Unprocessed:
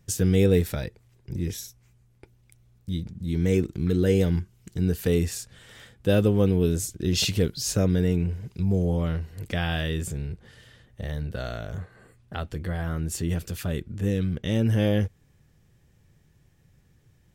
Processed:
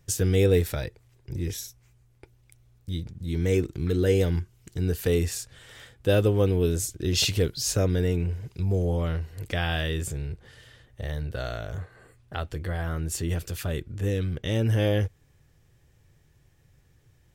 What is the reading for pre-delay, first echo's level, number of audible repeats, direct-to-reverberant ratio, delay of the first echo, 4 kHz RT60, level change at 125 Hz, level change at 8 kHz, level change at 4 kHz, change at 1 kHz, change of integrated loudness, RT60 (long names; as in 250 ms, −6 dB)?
no reverb audible, no echo audible, no echo audible, no reverb audible, no echo audible, no reverb audible, −0.5 dB, +1.0 dB, +1.0 dB, +1.0 dB, −1.0 dB, no reverb audible